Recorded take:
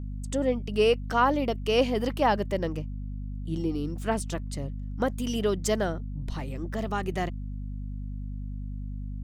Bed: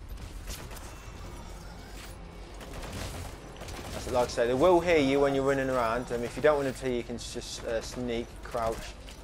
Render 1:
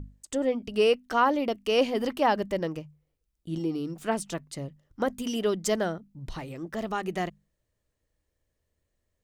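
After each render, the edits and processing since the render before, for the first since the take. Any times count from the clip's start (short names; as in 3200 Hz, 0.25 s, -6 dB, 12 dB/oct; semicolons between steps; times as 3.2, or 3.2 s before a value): notches 50/100/150/200/250 Hz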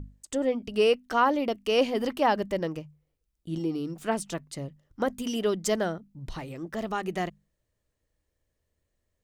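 nothing audible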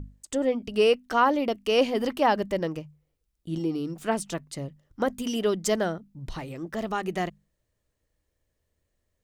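gain +1.5 dB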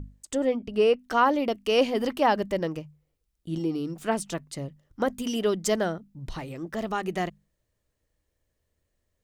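0.56–0.99 high shelf 2700 Hz -9.5 dB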